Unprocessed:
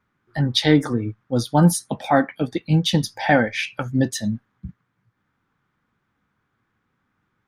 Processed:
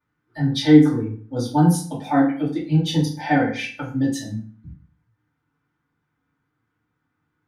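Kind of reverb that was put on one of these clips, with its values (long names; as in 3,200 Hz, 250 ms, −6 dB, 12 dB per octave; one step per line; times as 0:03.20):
feedback delay network reverb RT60 0.46 s, low-frequency decay 1.2×, high-frequency decay 0.75×, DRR −9.5 dB
level −14 dB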